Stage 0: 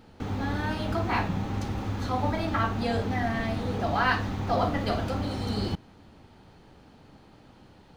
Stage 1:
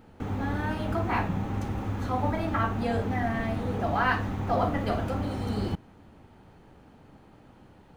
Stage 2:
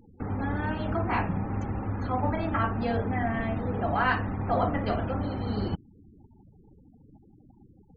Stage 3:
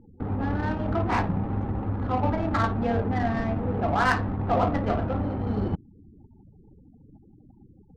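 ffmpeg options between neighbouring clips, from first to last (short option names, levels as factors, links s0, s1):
-af "equalizer=f=4500:t=o:w=1.1:g=-9"
-af "afftfilt=real='re*gte(hypot(re,im),0.00708)':imag='im*gte(hypot(re,im),0.00708)':win_size=1024:overlap=0.75"
-af "adynamicsmooth=sensitivity=2.5:basefreq=940,volume=1.41"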